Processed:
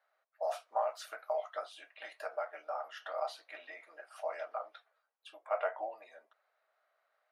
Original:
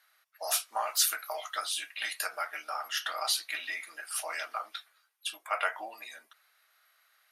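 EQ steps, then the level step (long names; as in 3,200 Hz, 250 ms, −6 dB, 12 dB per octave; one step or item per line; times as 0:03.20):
resonant band-pass 580 Hz, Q 2.9
+6.0 dB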